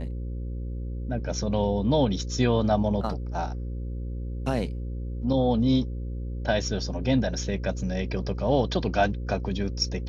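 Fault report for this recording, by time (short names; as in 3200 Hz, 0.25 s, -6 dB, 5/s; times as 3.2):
buzz 60 Hz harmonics 9 -32 dBFS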